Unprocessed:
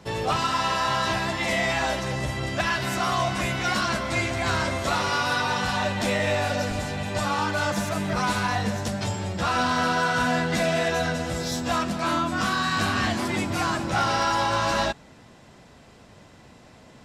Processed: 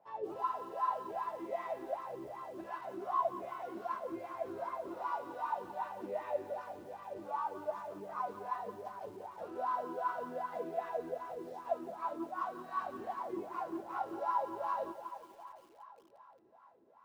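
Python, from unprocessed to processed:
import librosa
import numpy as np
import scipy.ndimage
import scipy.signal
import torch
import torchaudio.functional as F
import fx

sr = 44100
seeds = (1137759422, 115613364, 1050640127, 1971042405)

y = fx.echo_thinned(x, sr, ms=332, feedback_pct=72, hz=160.0, wet_db=-15.5)
y = fx.wah_lfo(y, sr, hz=2.6, low_hz=340.0, high_hz=1100.0, q=12.0)
y = fx.echo_crushed(y, sr, ms=174, feedback_pct=55, bits=9, wet_db=-13.5)
y = y * librosa.db_to_amplitude(-1.0)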